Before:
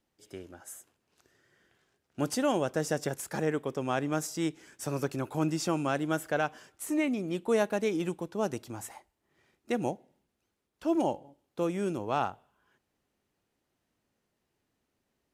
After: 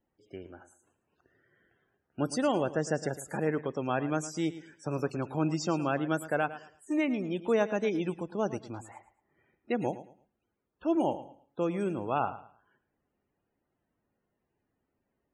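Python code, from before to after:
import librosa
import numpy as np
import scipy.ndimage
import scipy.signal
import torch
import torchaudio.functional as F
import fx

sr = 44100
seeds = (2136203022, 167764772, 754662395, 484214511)

y = fx.spec_topn(x, sr, count=64)
y = fx.env_lowpass(y, sr, base_hz=2600.0, full_db=-29.5)
y = fx.echo_feedback(y, sr, ms=110, feedback_pct=26, wet_db=-14.5)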